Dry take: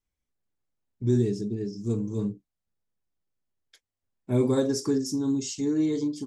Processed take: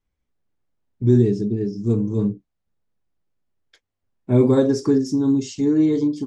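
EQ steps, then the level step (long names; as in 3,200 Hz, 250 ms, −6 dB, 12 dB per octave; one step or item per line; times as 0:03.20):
head-to-tape spacing loss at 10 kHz 22 dB
high-shelf EQ 8,300 Hz +9 dB
+8.5 dB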